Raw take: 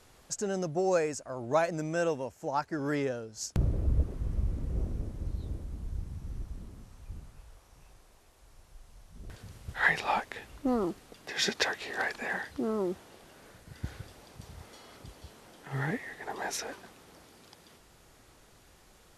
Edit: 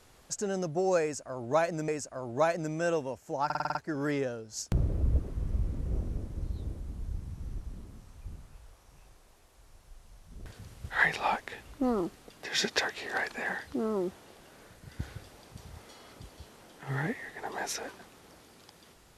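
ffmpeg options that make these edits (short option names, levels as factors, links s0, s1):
-filter_complex "[0:a]asplit=8[s0][s1][s2][s3][s4][s5][s6][s7];[s0]atrim=end=1.882[s8];[s1]atrim=start=1.018:end=2.642[s9];[s2]atrim=start=2.588:end=2.642[s10];[s3]atrim=start=2.588:end=2.642[s11];[s4]atrim=start=2.588:end=2.642[s12];[s5]atrim=start=2.588:end=2.642[s13];[s6]atrim=start=2.588:end=2.642[s14];[s7]atrim=start=2.588[s15];[s8][s9]acrossfade=d=0.004:c1=hsin:c2=hsin[s16];[s16][s10]acrossfade=d=0.004:c1=hsin:c2=hsin[s17];[s17][s11]acrossfade=d=0.004:c1=hsin:c2=hsin[s18];[s18][s12]acrossfade=d=0.004:c1=hsin:c2=hsin[s19];[s19][s13]acrossfade=d=0.004:c1=hsin:c2=hsin[s20];[s20][s14]acrossfade=d=0.004:c1=hsin:c2=hsin[s21];[s21][s15]acrossfade=d=0.004:c1=hsin:c2=hsin"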